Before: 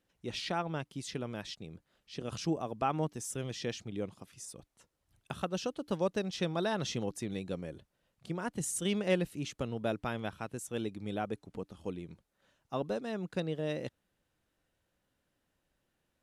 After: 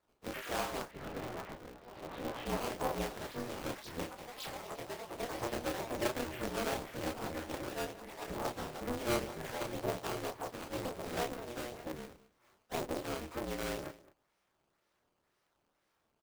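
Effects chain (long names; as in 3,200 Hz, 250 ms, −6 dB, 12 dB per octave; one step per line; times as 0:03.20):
partials spread apart or drawn together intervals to 81%
high-pass filter 410 Hz 12 dB per octave
treble cut that deepens with the level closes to 680 Hz, closed at −35 dBFS
dynamic equaliser 2,000 Hz, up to −7 dB, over −59 dBFS, Q 1.7
in parallel at −2.5 dB: downward compressor, threshold −45 dBFS, peak gain reduction 15 dB
on the sum: sample-and-hold swept by an LFO 14×, swing 160% 2 Hz
double-tracking delay 30 ms −3 dB
on a send: single-tap delay 211 ms −19 dB
on the sum: delay with pitch and tempo change per echo 138 ms, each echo +3 semitones, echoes 3, each echo −6 dB
0:00.91–0:02.46: high-frequency loss of the air 300 metres
ring modulator with a square carrier 120 Hz
level −1 dB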